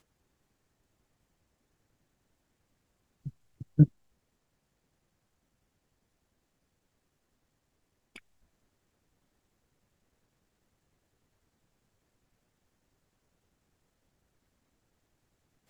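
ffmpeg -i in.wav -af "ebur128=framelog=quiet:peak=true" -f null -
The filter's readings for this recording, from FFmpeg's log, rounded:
Integrated loudness:
  I:         -25.9 LUFS
  Threshold: -40.4 LUFS
Loudness range:
  LRA:        21.9 LU
  Threshold: -57.1 LUFS
  LRA low:   -55.5 LUFS
  LRA high:  -33.7 LUFS
True peak:
  Peak:       -8.3 dBFS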